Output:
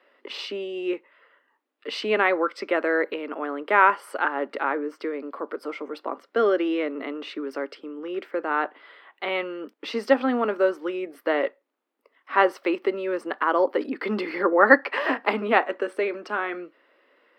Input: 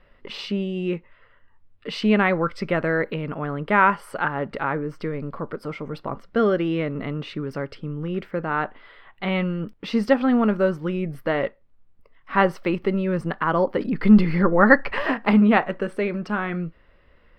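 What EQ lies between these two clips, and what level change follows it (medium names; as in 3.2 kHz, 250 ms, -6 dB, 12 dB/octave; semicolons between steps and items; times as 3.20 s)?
steep high-pass 270 Hz 48 dB/octave; 0.0 dB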